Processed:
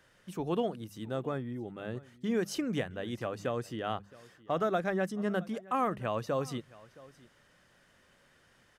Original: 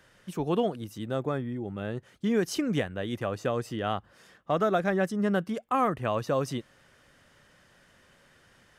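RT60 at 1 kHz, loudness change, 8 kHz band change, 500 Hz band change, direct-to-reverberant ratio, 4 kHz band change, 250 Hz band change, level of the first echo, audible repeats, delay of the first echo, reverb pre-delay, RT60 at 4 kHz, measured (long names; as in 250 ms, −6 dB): no reverb audible, −4.5 dB, −4.5 dB, −4.5 dB, no reverb audible, −4.5 dB, −5.0 dB, −21.5 dB, 1, 668 ms, no reverb audible, no reverb audible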